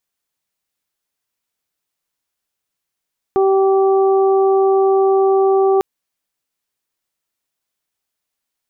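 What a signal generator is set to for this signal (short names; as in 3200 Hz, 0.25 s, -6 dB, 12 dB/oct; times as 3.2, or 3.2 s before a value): steady additive tone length 2.45 s, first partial 387 Hz, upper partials -7.5/-15 dB, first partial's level -11 dB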